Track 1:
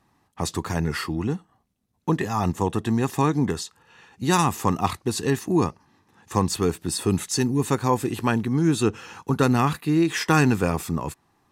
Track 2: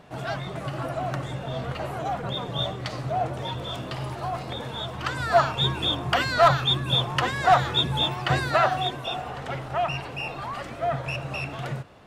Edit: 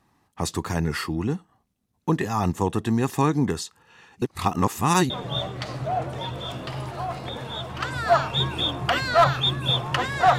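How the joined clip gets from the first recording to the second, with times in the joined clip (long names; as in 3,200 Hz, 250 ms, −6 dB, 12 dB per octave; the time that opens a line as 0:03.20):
track 1
0:04.22–0:05.10: reverse
0:05.10: continue with track 2 from 0:02.34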